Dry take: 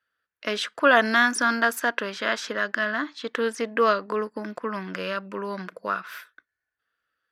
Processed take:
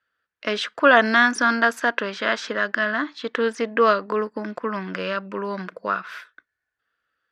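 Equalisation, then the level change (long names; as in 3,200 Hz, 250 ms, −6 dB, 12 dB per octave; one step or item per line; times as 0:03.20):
high-frequency loss of the air 73 metres
+3.5 dB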